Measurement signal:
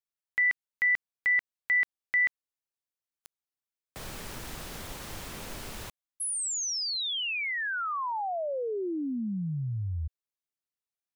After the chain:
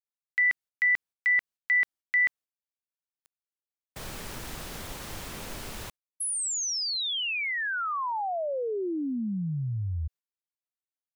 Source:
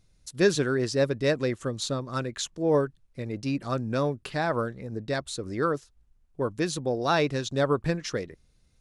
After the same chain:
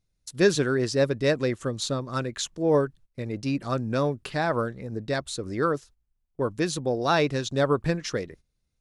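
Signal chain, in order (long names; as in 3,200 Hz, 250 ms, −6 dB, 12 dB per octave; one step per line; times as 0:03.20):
noise gate −49 dBFS, range −14 dB
level +1.5 dB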